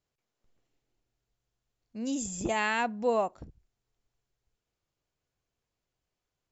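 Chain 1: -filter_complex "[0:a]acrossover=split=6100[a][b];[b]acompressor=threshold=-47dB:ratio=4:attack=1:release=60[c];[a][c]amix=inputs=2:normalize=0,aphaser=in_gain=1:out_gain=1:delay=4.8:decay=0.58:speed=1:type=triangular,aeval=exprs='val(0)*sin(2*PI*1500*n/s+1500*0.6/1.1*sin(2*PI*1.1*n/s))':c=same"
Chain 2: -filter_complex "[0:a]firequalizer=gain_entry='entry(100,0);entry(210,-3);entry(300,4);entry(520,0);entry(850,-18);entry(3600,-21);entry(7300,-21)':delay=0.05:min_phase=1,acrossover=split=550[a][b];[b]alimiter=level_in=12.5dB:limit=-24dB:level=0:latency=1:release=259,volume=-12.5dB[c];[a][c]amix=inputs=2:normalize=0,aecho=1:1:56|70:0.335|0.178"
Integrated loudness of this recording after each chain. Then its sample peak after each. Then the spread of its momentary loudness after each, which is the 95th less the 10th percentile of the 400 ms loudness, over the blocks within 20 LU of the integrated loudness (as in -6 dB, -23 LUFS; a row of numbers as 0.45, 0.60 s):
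-31.5, -34.0 LUFS; -15.0, -17.0 dBFS; 9, 18 LU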